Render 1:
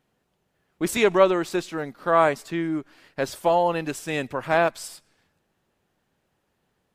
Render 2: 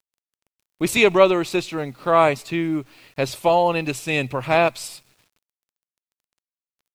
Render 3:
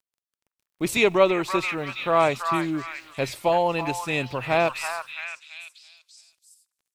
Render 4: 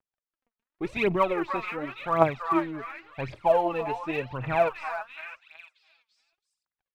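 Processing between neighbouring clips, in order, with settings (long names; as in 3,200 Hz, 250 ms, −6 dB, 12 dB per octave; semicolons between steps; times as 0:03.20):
thirty-one-band graphic EQ 125 Hz +10 dB, 1,600 Hz −7 dB, 2,500 Hz +8 dB, 4,000 Hz +5 dB; bit-depth reduction 10 bits, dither none; level +3 dB
echo through a band-pass that steps 333 ms, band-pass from 1,300 Hz, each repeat 0.7 octaves, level −2 dB; level −4 dB
low-pass filter 1,900 Hz 12 dB per octave; phase shifter 0.9 Hz, delay 4.9 ms, feedback 72%; level −5 dB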